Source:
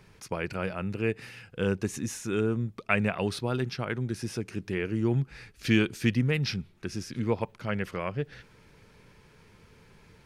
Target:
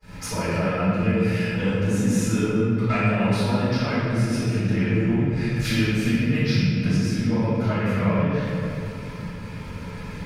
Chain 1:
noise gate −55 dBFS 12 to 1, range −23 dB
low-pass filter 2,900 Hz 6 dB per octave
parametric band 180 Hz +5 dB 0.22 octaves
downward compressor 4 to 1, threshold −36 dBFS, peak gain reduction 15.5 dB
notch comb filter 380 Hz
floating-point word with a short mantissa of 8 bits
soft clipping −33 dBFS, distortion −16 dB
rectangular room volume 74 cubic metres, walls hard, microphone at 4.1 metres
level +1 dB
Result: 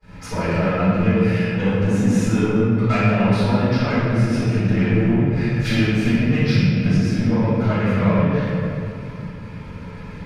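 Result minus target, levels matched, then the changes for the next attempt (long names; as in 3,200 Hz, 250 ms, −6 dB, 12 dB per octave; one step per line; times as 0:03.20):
downward compressor: peak gain reduction −5.5 dB; 4,000 Hz band −3.0 dB
change: downward compressor 4 to 1, threshold −43 dBFS, peak gain reduction 21 dB
remove: low-pass filter 2,900 Hz 6 dB per octave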